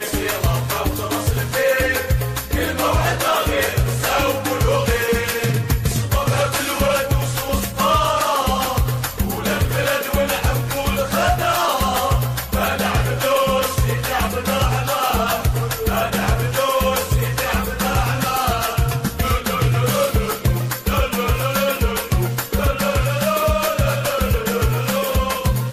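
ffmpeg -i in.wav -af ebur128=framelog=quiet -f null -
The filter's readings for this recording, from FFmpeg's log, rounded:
Integrated loudness:
  I:         -19.2 LUFS
  Threshold: -29.2 LUFS
Loudness range:
  LRA:         0.8 LU
  Threshold: -39.1 LUFS
  LRA low:   -19.5 LUFS
  LRA high:  -18.7 LUFS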